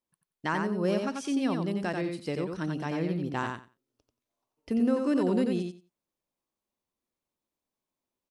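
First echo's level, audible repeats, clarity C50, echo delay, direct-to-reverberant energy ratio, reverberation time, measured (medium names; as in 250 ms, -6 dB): -4.5 dB, 2, no reverb, 90 ms, no reverb, no reverb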